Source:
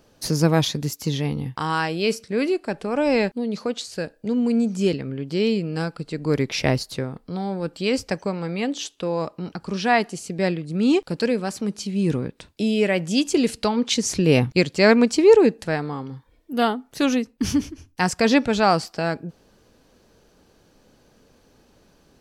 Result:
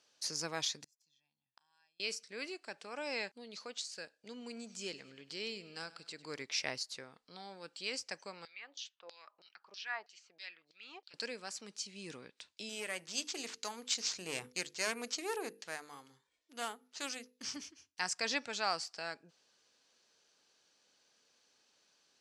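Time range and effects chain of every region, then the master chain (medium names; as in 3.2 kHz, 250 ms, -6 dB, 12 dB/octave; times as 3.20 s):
0.84–2.00 s: treble shelf 8 kHz +6.5 dB + comb 1.2 ms, depth 80% + inverted gate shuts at -19 dBFS, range -39 dB
4.31–6.43 s: upward compressor, threshold -28 dBFS + feedback delay 100 ms, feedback 51%, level -18.5 dB
8.45–11.14 s: low-pass 7.3 kHz 24 dB/octave + LFO band-pass saw down 3.1 Hz 570–4800 Hz
12.69–17.56 s: valve stage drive 10 dB, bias 0.45 + hum notches 50/100/150/200/250/300/350/400/450/500 Hz + careless resampling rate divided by 4×, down none, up hold
whole clip: dynamic bell 3.4 kHz, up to -5 dB, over -43 dBFS, Q 1.5; Bessel low-pass 5 kHz, order 4; differentiator; trim +1 dB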